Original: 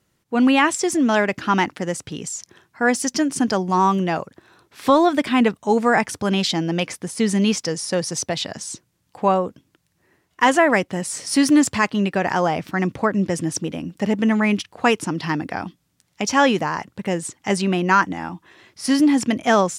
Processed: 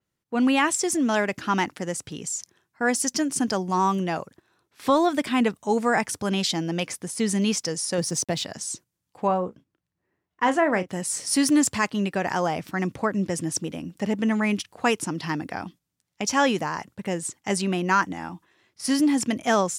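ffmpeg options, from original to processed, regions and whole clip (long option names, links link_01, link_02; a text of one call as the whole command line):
ffmpeg -i in.wav -filter_complex "[0:a]asettb=1/sr,asplit=3[link_01][link_02][link_03];[link_01]atrim=end=7.984[link_04];[link_02]atrim=start=7.98:end=8.44,asetpts=PTS-STARTPTS,afade=type=in:duration=0.004:curve=qsin,afade=type=out:start_time=0.456:duration=0.004:curve=qsin,equalizer=frequency=200:width_type=o:width=2.4:gain=6,aeval=exprs='sgn(val(0))*max(abs(val(0))-0.00355,0)':channel_layout=same[link_05];[link_03]atrim=start=8.436[link_06];[link_04][link_05]acrossfade=duration=0.004:curve1=hsin:curve2=qsin[link_07];[link_07][link_06]acrossfade=duration=0.004:curve1=qsin:curve2=hsin,asettb=1/sr,asplit=3[link_08][link_09][link_10];[link_08]atrim=end=9.274[link_11];[link_09]atrim=start=9.27:end=10.89,asetpts=PTS-STARTPTS,afade=type=in:duration=0.004:curve=qsin,afade=type=out:start_time=1.616:duration=0.004:curve=qsin,lowpass=frequency=1800:poles=1,asplit=2[link_12][link_13];[link_13]adelay=33,volume=-12dB[link_14];[link_12][link_14]amix=inputs=2:normalize=0,atrim=end_sample=71442[link_15];[link_10]atrim=start=10.886[link_16];[link_11][link_15]acrossfade=duration=0.004:curve1=hsin:curve2=qsin[link_17];[link_17][link_16]acrossfade=duration=0.004:curve1=qsin:curve2=hsin,agate=range=-9dB:threshold=-42dB:ratio=16:detection=peak,adynamicequalizer=threshold=0.0126:dfrequency=5500:dqfactor=0.7:tfrequency=5500:tqfactor=0.7:attack=5:release=100:ratio=0.375:range=3.5:mode=boostabove:tftype=highshelf,volume=-5dB" out.wav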